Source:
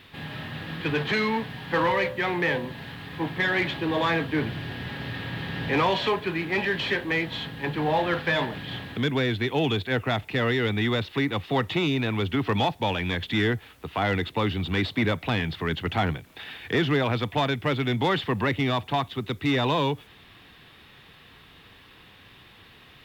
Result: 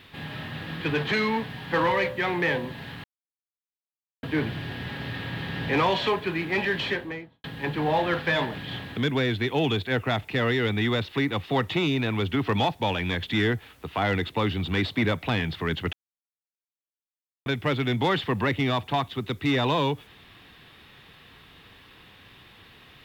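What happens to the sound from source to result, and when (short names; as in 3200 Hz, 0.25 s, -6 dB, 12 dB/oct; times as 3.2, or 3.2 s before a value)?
3.04–4.23 mute
6.79–7.44 studio fade out
15.93–17.46 mute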